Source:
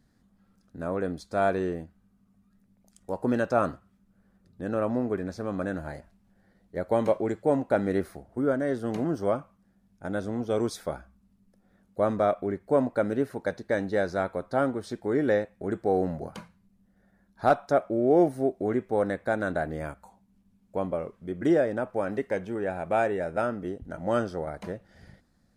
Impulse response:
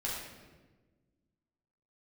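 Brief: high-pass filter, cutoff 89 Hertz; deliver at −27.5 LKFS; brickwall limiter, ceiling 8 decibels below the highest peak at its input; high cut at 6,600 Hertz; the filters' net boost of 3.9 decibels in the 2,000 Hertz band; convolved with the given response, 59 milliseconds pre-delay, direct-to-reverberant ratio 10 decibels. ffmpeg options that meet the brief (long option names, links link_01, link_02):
-filter_complex "[0:a]highpass=89,lowpass=6600,equalizer=frequency=2000:width_type=o:gain=5.5,alimiter=limit=-14.5dB:level=0:latency=1,asplit=2[link_01][link_02];[1:a]atrim=start_sample=2205,adelay=59[link_03];[link_02][link_03]afir=irnorm=-1:irlink=0,volume=-14dB[link_04];[link_01][link_04]amix=inputs=2:normalize=0,volume=1.5dB"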